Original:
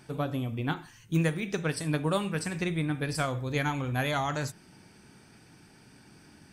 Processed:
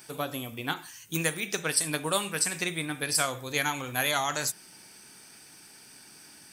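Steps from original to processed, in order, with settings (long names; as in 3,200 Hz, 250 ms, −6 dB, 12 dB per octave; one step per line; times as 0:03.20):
background noise brown −67 dBFS
RIAA equalisation recording
level +1.5 dB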